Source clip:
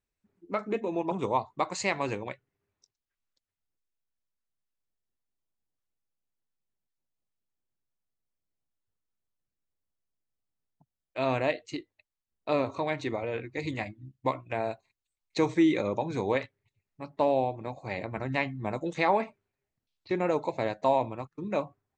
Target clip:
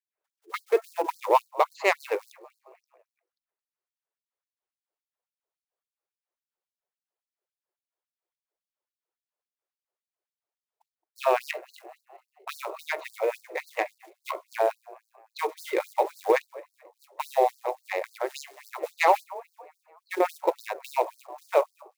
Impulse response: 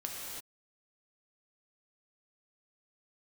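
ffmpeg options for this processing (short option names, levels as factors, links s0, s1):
-filter_complex "[0:a]bandreject=f=50:t=h:w=6,bandreject=f=100:t=h:w=6,bandreject=f=150:t=h:w=6,bandreject=f=200:t=h:w=6,bandreject=f=250:t=h:w=6,bandreject=f=300:t=h:w=6,bandreject=f=350:t=h:w=6,bandreject=f=400:t=h:w=6,asplit=5[s0][s1][s2][s3][s4];[s1]adelay=219,afreqshift=34,volume=0.1[s5];[s2]adelay=438,afreqshift=68,volume=0.0531[s6];[s3]adelay=657,afreqshift=102,volume=0.0282[s7];[s4]adelay=876,afreqshift=136,volume=0.015[s8];[s0][s5][s6][s7][s8]amix=inputs=5:normalize=0,adynamicsmooth=sensitivity=1.5:basefreq=1300,acrusher=bits=7:mode=log:mix=0:aa=0.000001,lowshelf=f=290:g=6,alimiter=limit=0.158:level=0:latency=1:release=321,afftfilt=real='re*gte(b*sr/1024,320*pow(4200/320,0.5+0.5*sin(2*PI*3.6*pts/sr)))':imag='im*gte(b*sr/1024,320*pow(4200/320,0.5+0.5*sin(2*PI*3.6*pts/sr)))':win_size=1024:overlap=0.75,volume=2.82"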